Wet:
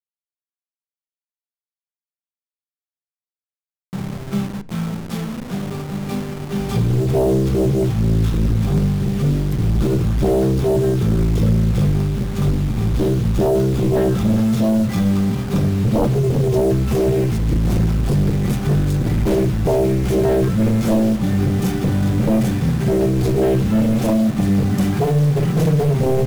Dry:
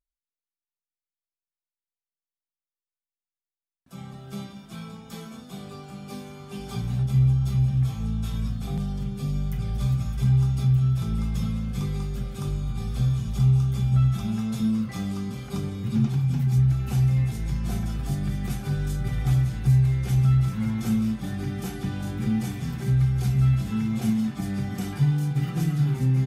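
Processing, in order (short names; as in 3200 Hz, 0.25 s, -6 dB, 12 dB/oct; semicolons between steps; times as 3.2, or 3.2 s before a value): level-crossing sampler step -38.5 dBFS; low shelf 390 Hz +5 dB; sine folder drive 13 dB, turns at -6 dBFS; on a send: reverb RT60 0.55 s, pre-delay 3 ms, DRR 15 dB; on the sum: gain -6.5 dB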